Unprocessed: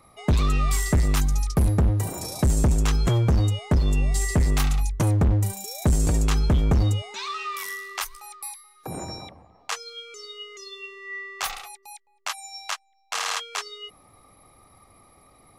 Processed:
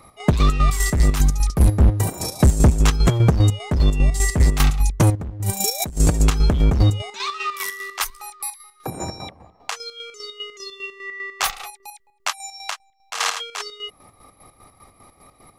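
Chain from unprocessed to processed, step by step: 5.15–5.97 s: compressor with a negative ratio -30 dBFS, ratio -1; square tremolo 5 Hz, depth 60%, duty 50%; trim +7 dB

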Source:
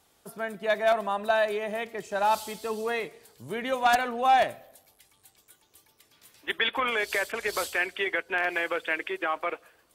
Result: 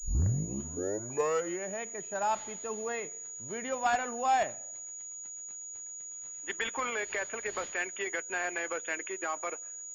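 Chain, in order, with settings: tape start-up on the opening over 1.81 s; class-D stage that switches slowly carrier 6.8 kHz; trim -6 dB

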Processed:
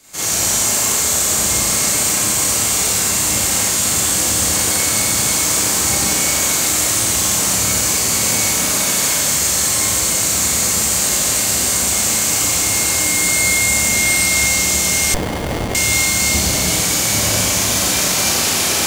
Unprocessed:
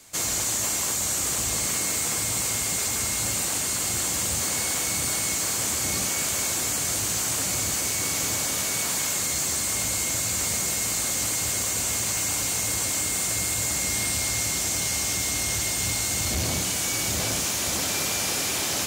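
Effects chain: Schroeder reverb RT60 1.7 s, combs from 29 ms, DRR -9.5 dB; 15.14–15.75 s: sliding maximum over 33 samples

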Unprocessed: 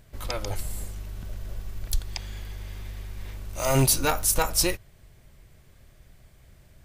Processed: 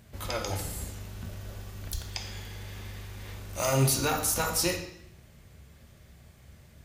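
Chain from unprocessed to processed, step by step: peak limiter -17.5 dBFS, peak gain reduction 7.5 dB; high-pass 55 Hz; on a send: reverberation RT60 0.70 s, pre-delay 3 ms, DRR 3 dB

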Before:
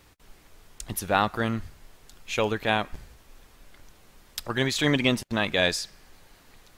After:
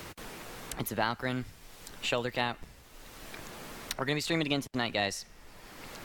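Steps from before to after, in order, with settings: tape speed +12%; three bands compressed up and down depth 70%; trim -6 dB

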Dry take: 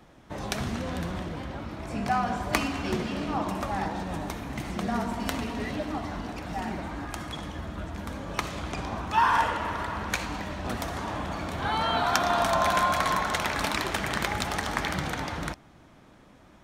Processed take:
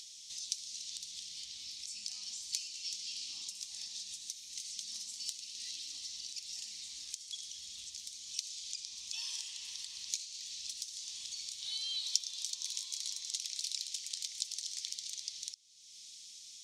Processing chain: inverse Chebyshev high-pass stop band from 1.6 kHz, stop band 60 dB; upward compressor, threshold -35 dBFS; distance through air 110 m; trim +9.5 dB

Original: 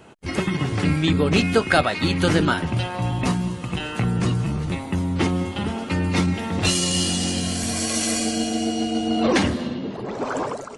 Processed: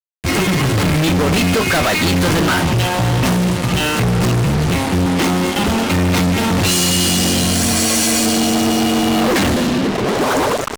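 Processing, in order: 5.06–5.68 s: high-pass 190 Hz 12 dB/octave; fuzz box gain 37 dB, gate -35 dBFS

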